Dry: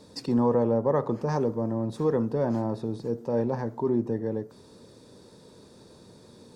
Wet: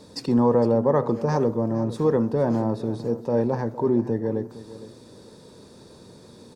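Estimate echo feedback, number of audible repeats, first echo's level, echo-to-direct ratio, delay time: 23%, 2, -16.0 dB, -16.0 dB, 0.46 s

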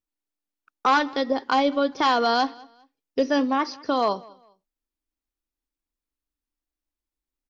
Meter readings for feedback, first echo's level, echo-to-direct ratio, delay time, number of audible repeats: 28%, -23.5 dB, -23.0 dB, 0.201 s, 2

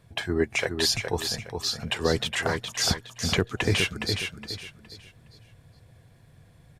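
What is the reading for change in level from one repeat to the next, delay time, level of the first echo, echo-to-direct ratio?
-10.5 dB, 0.415 s, -6.0 dB, -5.5 dB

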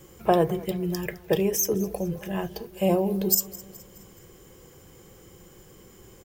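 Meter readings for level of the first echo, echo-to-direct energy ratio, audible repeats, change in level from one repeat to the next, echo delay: -20.0 dB, -18.5 dB, 3, -6.0 dB, 0.211 s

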